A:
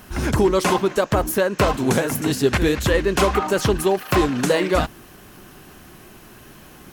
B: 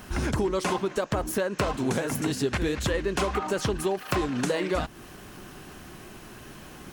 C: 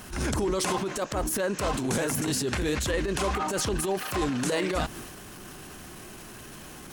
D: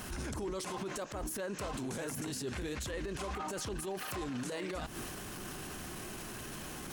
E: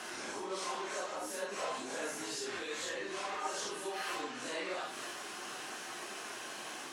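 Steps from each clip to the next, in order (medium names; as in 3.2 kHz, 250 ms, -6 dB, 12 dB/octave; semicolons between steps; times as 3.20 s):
peaking EQ 13 kHz -14 dB 0.22 oct; compression 3:1, threshold -26 dBFS, peak gain reduction 10.5 dB
peaking EQ 10 kHz +6.5 dB 1.7 oct; transient shaper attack -11 dB, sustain +6 dB
compression 4:1, threshold -34 dBFS, peak gain reduction 9.5 dB; peak limiter -30.5 dBFS, peak gain reduction 8.5 dB
phase randomisation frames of 200 ms; band-pass 510–7500 Hz; trim +4 dB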